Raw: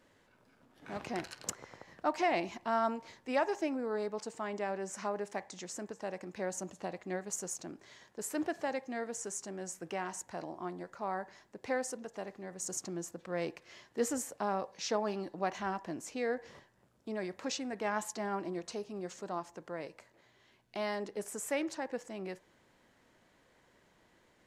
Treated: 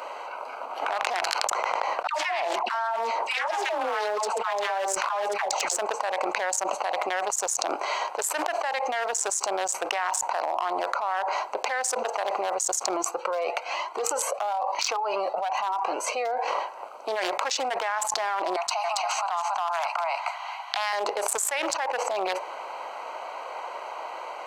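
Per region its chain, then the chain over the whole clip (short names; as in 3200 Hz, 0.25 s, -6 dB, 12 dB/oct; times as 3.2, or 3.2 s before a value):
2.07–5.77 dispersion lows, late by 0.124 s, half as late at 860 Hz + Doppler distortion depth 0.13 ms
12.96–16.48 compressor 2:1, threshold -40 dBFS + cascading flanger rising 1.1 Hz
18.56–20.93 steep high-pass 690 Hz 72 dB/oct + echo 0.277 s -3 dB
whole clip: Wiener smoothing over 25 samples; HPF 760 Hz 24 dB/oct; fast leveller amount 100%; gain +3.5 dB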